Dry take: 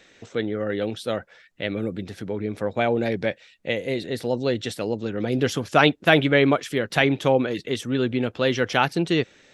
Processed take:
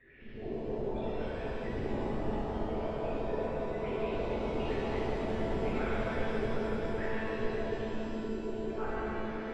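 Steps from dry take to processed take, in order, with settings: resonances exaggerated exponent 3; low-pass 2.1 kHz 24 dB/octave; peaking EQ 610 Hz -13 dB 1.1 oct; reverse; compression 6:1, threshold -37 dBFS, peak gain reduction 17.5 dB; reverse; ever faster or slower copies 99 ms, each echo +4 st, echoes 2; on a send: feedback echo behind a low-pass 131 ms, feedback 66%, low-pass 1.6 kHz, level -7.5 dB; on the sum: monotone LPC vocoder at 8 kHz 220 Hz; pitch-shifted reverb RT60 3.3 s, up +7 st, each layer -8 dB, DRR -10 dB; trim -7 dB

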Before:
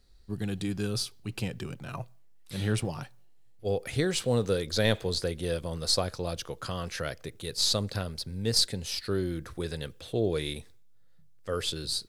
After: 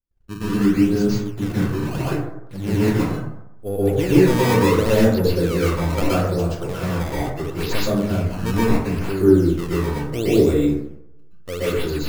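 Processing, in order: painted sound fall, 1.82–2.03 s, 270–1800 Hz -37 dBFS; tilt shelf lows +6 dB, about 1.2 kHz; de-hum 52.22 Hz, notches 8; in parallel at -11 dB: saturation -22 dBFS, distortion -10 dB; on the sum: decimation with a swept rate 18×, swing 160% 0.74 Hz; small resonant body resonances 300/2700 Hz, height 8 dB, ringing for 85 ms; gate -45 dBFS, range -29 dB; plate-style reverb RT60 0.83 s, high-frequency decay 0.35×, pre-delay 110 ms, DRR -8.5 dB; trim -4 dB

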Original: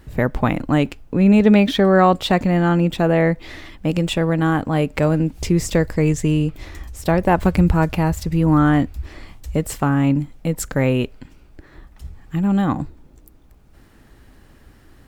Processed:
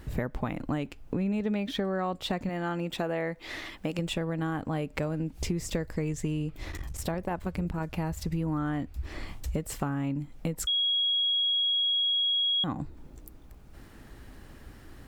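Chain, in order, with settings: 2.49–3.99 s: bass shelf 230 Hz -12 dB; compression 5:1, threshold -29 dBFS, peak gain reduction 18 dB; 6.70–7.95 s: transformer saturation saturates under 250 Hz; 10.67–12.64 s: bleep 3.31 kHz -23.5 dBFS

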